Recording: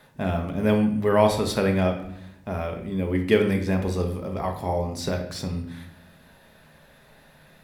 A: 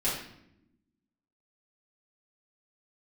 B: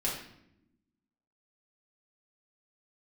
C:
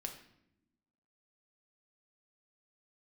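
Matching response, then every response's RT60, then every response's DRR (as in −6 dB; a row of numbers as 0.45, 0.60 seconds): C; 0.80, 0.80, 0.80 seconds; −10.5, −6.0, 3.0 decibels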